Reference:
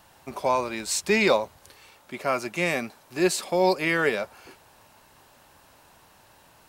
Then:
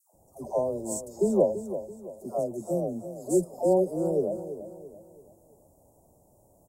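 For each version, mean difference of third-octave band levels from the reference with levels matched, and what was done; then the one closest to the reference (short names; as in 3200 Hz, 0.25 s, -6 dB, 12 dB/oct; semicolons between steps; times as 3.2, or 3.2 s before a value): 13.0 dB: elliptic band-stop 650–7500 Hz, stop band 60 dB; high shelf 4000 Hz -6.5 dB; dispersion lows, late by 0.144 s, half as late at 820 Hz; on a send: feedback echo 0.335 s, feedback 40%, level -11.5 dB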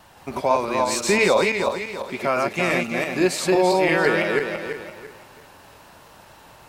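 7.0 dB: regenerating reverse delay 0.169 s, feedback 53%, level -1.5 dB; high shelf 5500 Hz -6 dB; in parallel at 0 dB: compressor, threshold -29 dBFS, peak gain reduction 13 dB; on the sum: vibrato 4.3 Hz 35 cents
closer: second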